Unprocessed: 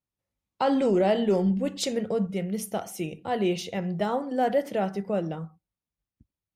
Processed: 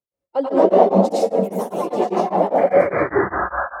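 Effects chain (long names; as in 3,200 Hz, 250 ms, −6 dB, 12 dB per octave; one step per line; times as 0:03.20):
turntable brake at the end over 1.99 s
reverb reduction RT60 0.67 s
parametric band 510 Hz +15 dB 1.3 octaves
sound drawn into the spectrogram noise, 0:05.38–0:06.21, 510–1,700 Hz −20 dBFS
phase-vocoder stretch with locked phases 0.58×
delay with pitch and tempo change per echo 185 ms, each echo +3 semitones, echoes 2
dense smooth reverb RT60 0.78 s, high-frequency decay 0.6×, pre-delay 80 ms, DRR −6.5 dB
tremolo along a rectified sine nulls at 5 Hz
level −6.5 dB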